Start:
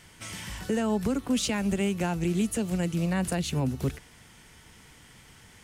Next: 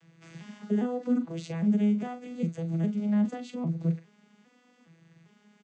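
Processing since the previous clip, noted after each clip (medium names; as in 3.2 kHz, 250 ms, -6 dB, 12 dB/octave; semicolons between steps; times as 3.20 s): vocoder on a broken chord major triad, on E3, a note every 404 ms; doubling 42 ms -10 dB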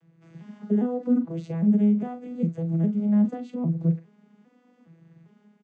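tilt shelf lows +8 dB, about 1.4 kHz; level rider gain up to 5.5 dB; trim -8 dB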